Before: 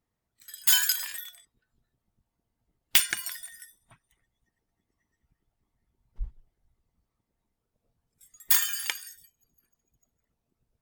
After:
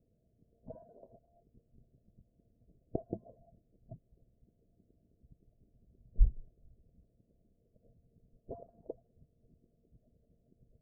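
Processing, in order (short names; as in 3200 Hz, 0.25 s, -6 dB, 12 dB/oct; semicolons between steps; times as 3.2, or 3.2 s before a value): rippled Chebyshev low-pass 670 Hz, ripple 3 dB; gain +12.5 dB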